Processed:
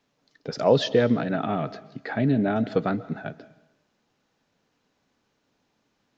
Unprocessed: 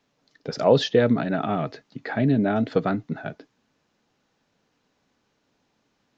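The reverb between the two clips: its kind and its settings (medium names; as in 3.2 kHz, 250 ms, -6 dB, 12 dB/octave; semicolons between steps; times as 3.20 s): algorithmic reverb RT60 0.87 s, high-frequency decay 0.95×, pre-delay 100 ms, DRR 17.5 dB; trim -1.5 dB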